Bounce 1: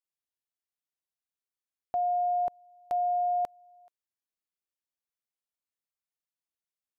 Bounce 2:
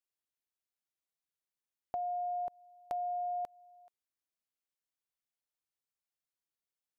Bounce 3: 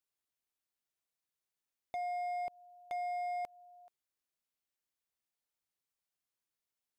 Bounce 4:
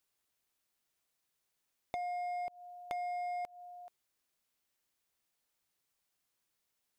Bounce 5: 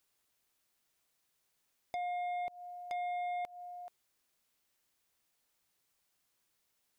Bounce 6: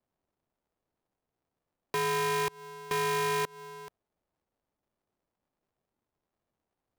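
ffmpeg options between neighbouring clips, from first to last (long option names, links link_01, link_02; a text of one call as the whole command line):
ffmpeg -i in.wav -af "acompressor=threshold=-32dB:ratio=6,volume=-2.5dB" out.wav
ffmpeg -i in.wav -af "asoftclip=type=hard:threshold=-36.5dB,volume=1dB" out.wav
ffmpeg -i in.wav -af "acompressor=threshold=-46dB:ratio=6,volume=8dB" out.wav
ffmpeg -i in.wav -af "asoftclip=type=tanh:threshold=-38dB,volume=4dB" out.wav
ffmpeg -i in.wav -filter_complex "[0:a]acrossover=split=180|720[link_01][link_02][link_03];[link_03]acrusher=bits=7:mix=0:aa=0.000001[link_04];[link_01][link_02][link_04]amix=inputs=3:normalize=0,aeval=exprs='val(0)*sgn(sin(2*PI*290*n/s))':channel_layout=same,volume=7.5dB" out.wav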